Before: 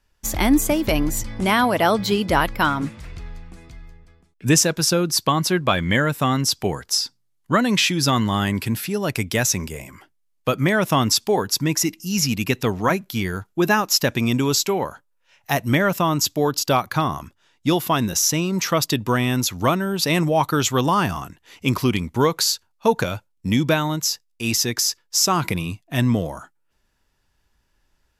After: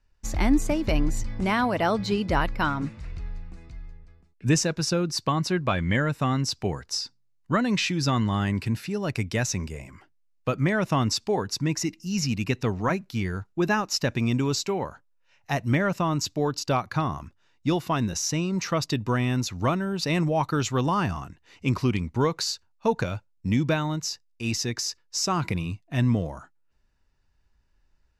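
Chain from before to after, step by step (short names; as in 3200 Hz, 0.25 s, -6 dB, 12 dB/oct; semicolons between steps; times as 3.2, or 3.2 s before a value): LPF 6500 Hz 12 dB/oct; low shelf 130 Hz +8.5 dB; notch 3300 Hz, Q 9.3; gain -6.5 dB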